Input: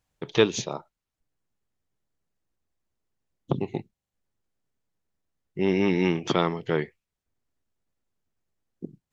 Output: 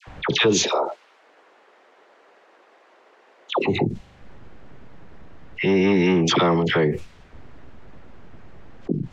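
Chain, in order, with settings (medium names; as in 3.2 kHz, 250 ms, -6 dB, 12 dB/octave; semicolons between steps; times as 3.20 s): 0.57–3.60 s: high-pass 420 Hz 24 dB/octave; phase dispersion lows, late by 74 ms, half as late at 1.1 kHz; level-controlled noise filter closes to 2 kHz, open at -24.5 dBFS; level flattener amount 70%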